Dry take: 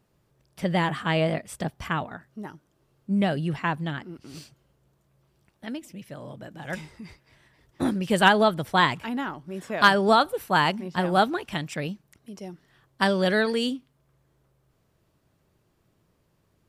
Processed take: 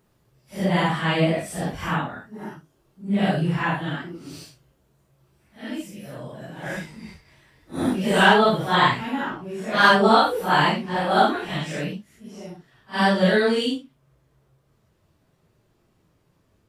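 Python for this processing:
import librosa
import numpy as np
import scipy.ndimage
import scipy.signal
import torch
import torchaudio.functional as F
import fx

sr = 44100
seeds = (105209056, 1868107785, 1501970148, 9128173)

y = fx.phase_scramble(x, sr, seeds[0], window_ms=200)
y = fx.high_shelf(y, sr, hz=9500.0, db=fx.steps((0.0, 2.5), (8.1, -5.0)))
y = y * 10.0 ** (3.5 / 20.0)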